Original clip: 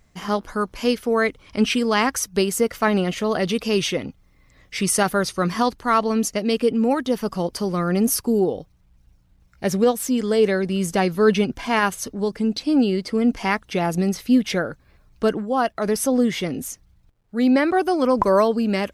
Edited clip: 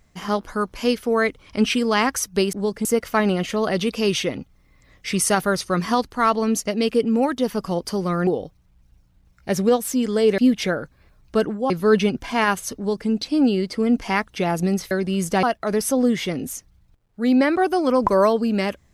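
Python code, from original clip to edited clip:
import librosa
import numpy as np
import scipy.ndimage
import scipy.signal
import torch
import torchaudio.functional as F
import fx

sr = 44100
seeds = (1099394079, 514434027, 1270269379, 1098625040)

y = fx.edit(x, sr, fx.cut(start_s=7.95, length_s=0.47),
    fx.swap(start_s=10.53, length_s=0.52, other_s=14.26, other_length_s=1.32),
    fx.duplicate(start_s=12.12, length_s=0.32, to_s=2.53), tone=tone)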